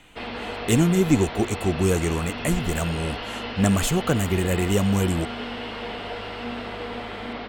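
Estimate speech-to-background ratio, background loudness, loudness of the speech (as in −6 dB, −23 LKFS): 9.0 dB, −32.5 LKFS, −23.5 LKFS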